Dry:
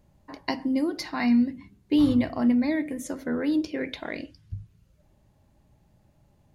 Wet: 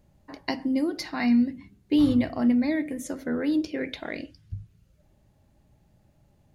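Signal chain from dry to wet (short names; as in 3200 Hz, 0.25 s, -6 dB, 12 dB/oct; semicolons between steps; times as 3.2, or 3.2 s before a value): bell 1000 Hz -4.5 dB 0.31 oct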